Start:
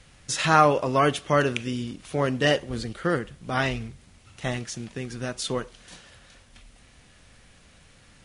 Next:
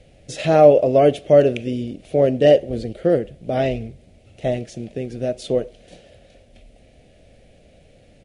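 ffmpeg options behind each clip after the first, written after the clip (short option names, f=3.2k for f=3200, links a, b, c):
-af "firequalizer=gain_entry='entry(170,0);entry(630,10);entry(1000,-19);entry(2300,-5);entry(5700,-11)':delay=0.05:min_phase=1,volume=3.5dB"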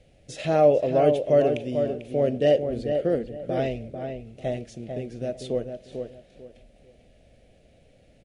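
-filter_complex "[0:a]asplit=2[a][b];[b]adelay=445,lowpass=f=1.9k:p=1,volume=-6dB,asplit=2[c][d];[d]adelay=445,lowpass=f=1.9k:p=1,volume=0.26,asplit=2[e][f];[f]adelay=445,lowpass=f=1.9k:p=1,volume=0.26[g];[a][c][e][g]amix=inputs=4:normalize=0,volume=-7dB"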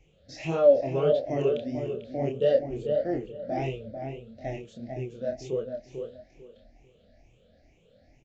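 -af "afftfilt=real='re*pow(10,16/40*sin(2*PI*(0.71*log(max(b,1)*sr/1024/100)/log(2)-(2.2)*(pts-256)/sr)))':imag='im*pow(10,16/40*sin(2*PI*(0.71*log(max(b,1)*sr/1024/100)/log(2)-(2.2)*(pts-256)/sr)))':win_size=1024:overlap=0.75,aresample=16000,aresample=44100,flanger=delay=22.5:depth=7.4:speed=1.6,volume=-3.5dB"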